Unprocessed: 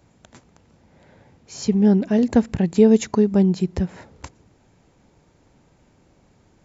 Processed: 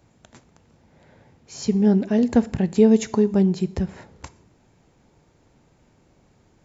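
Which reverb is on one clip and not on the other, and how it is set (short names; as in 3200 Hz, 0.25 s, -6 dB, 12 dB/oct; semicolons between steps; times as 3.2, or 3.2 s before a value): two-slope reverb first 0.53 s, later 1.9 s, DRR 14.5 dB; gain -1.5 dB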